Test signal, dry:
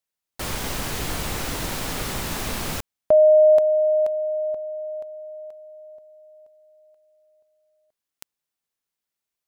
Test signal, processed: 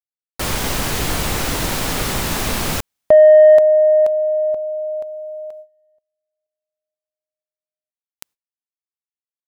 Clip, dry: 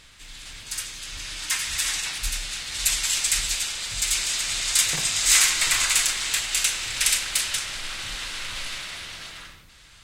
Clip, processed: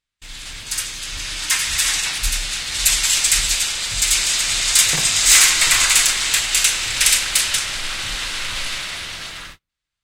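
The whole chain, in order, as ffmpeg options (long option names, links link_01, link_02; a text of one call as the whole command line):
ffmpeg -i in.wav -af "agate=range=-40dB:threshold=-40dB:ratio=16:release=345:detection=rms,acontrast=59,volume=1dB" out.wav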